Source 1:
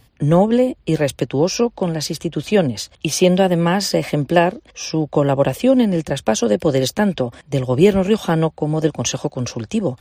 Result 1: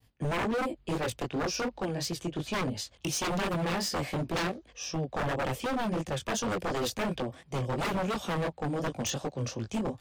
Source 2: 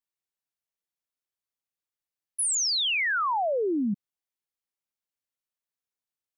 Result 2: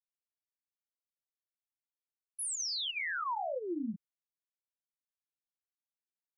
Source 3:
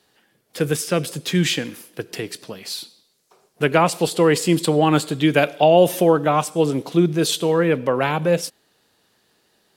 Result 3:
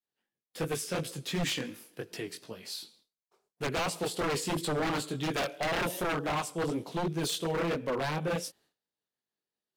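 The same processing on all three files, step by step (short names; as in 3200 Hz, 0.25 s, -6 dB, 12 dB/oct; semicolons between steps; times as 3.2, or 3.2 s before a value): chorus 2.8 Hz, delay 17.5 ms, depth 5.8 ms; wavefolder -18 dBFS; expander -52 dBFS; gain -7 dB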